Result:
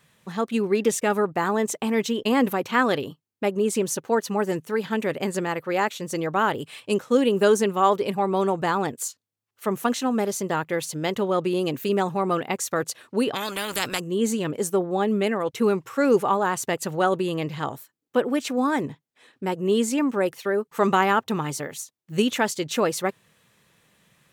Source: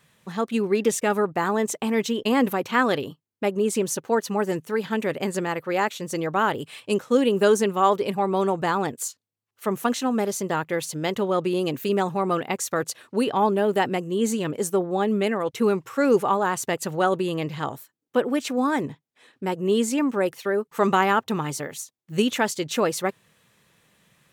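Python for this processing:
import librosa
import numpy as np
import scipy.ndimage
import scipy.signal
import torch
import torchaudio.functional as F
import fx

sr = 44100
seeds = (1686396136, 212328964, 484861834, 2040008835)

y = fx.spectral_comp(x, sr, ratio=4.0, at=(13.33, 13.99), fade=0.02)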